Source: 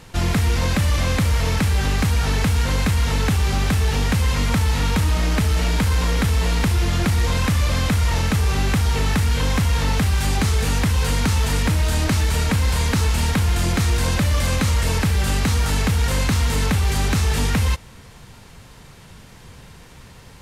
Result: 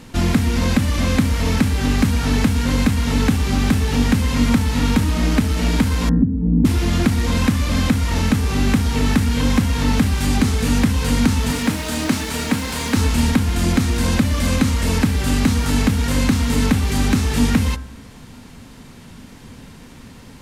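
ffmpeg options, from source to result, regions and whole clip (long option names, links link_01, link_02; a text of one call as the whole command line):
ffmpeg -i in.wav -filter_complex "[0:a]asettb=1/sr,asplit=3[link_01][link_02][link_03];[link_01]atrim=end=6.094[link_04];[link_02]atrim=start=6.09:end=6.65,asetpts=PTS-STARTPTS,afade=type=in:duration=0.004:curve=qsin,afade=type=out:start_time=0.556:duration=0.004:curve=qsin,lowpass=frequency=230:width_type=q:width=2.8,aecho=1:1:6.8:0.42,atrim=end_sample=24696[link_05];[link_03]atrim=start=6.646[link_06];[link_04][link_05]acrossfade=duration=0.004:curve1=hsin:curve2=qsin[link_07];[link_07][link_06]acrossfade=duration=0.004:curve1=qsin:curve2=hsin,asettb=1/sr,asplit=3[link_08][link_09][link_10];[link_08]atrim=end=11.514[link_11];[link_09]atrim=start=11.51:end=12.97,asetpts=PTS-STARTPTS,afade=type=in:duration=0.004:curve=qsin,afade=type=out:start_time=1.456:duration=0.004:curve=qsin,highpass=frequency=290:poles=1,acrusher=bits=8:dc=4:mix=0:aa=0.000001[link_12];[link_10]atrim=start=12.966[link_13];[link_11][link_12]acrossfade=duration=0.004:curve1=hsin:curve2=qsin[link_14];[link_14][link_13]acrossfade=duration=0.004:curve1=qsin:curve2=hsin,equalizer=frequency=250:width=2.4:gain=13.5,bandreject=frequency=65.66:width_type=h:width=4,bandreject=frequency=131.32:width_type=h:width=4,bandreject=frequency=196.98:width_type=h:width=4,bandreject=frequency=262.64:width_type=h:width=4,bandreject=frequency=328.3:width_type=h:width=4,bandreject=frequency=393.96:width_type=h:width=4,bandreject=frequency=459.62:width_type=h:width=4,bandreject=frequency=525.28:width_type=h:width=4,bandreject=frequency=590.94:width_type=h:width=4,bandreject=frequency=656.6:width_type=h:width=4,bandreject=frequency=722.26:width_type=h:width=4,bandreject=frequency=787.92:width_type=h:width=4,bandreject=frequency=853.58:width_type=h:width=4,bandreject=frequency=919.24:width_type=h:width=4,bandreject=frequency=984.9:width_type=h:width=4,bandreject=frequency=1050.56:width_type=h:width=4,bandreject=frequency=1116.22:width_type=h:width=4,bandreject=frequency=1181.88:width_type=h:width=4,bandreject=frequency=1247.54:width_type=h:width=4,bandreject=frequency=1313.2:width_type=h:width=4,bandreject=frequency=1378.86:width_type=h:width=4,bandreject=frequency=1444.52:width_type=h:width=4,bandreject=frequency=1510.18:width_type=h:width=4,bandreject=frequency=1575.84:width_type=h:width=4,bandreject=frequency=1641.5:width_type=h:width=4,bandreject=frequency=1707.16:width_type=h:width=4,bandreject=frequency=1772.82:width_type=h:width=4,bandreject=frequency=1838.48:width_type=h:width=4,bandreject=frequency=1904.14:width_type=h:width=4,alimiter=limit=-6dB:level=0:latency=1:release=339,volume=1dB" out.wav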